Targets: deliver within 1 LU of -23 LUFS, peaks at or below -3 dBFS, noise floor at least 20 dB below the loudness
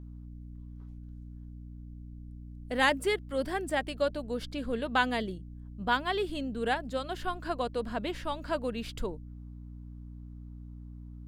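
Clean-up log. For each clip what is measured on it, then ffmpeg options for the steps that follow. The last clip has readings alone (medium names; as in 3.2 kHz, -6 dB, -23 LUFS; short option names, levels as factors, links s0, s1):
hum 60 Hz; highest harmonic 300 Hz; hum level -42 dBFS; loudness -32.0 LUFS; peak level -10.5 dBFS; loudness target -23.0 LUFS
-> -af "bandreject=f=60:t=h:w=4,bandreject=f=120:t=h:w=4,bandreject=f=180:t=h:w=4,bandreject=f=240:t=h:w=4,bandreject=f=300:t=h:w=4"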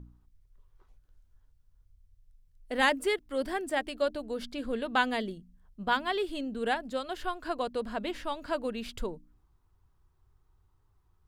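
hum not found; loudness -32.0 LUFS; peak level -10.5 dBFS; loudness target -23.0 LUFS
-> -af "volume=2.82,alimiter=limit=0.708:level=0:latency=1"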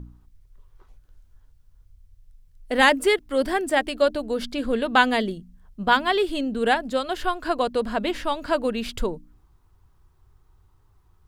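loudness -23.5 LUFS; peak level -3.0 dBFS; noise floor -59 dBFS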